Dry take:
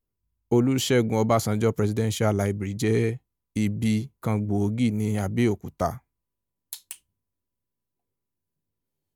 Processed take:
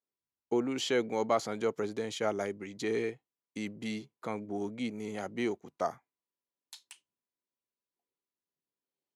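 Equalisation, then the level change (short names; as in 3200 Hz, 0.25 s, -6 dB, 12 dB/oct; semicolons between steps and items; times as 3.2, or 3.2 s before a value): BPF 330–6000 Hz; -5.5 dB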